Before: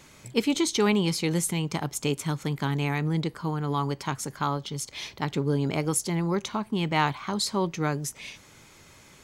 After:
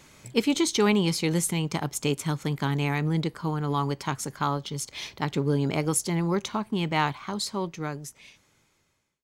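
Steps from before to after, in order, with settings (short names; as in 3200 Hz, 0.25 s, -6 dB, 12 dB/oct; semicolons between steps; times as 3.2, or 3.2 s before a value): ending faded out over 2.72 s; in parallel at -11.5 dB: crossover distortion -41.5 dBFS; on the sum: gain -1 dB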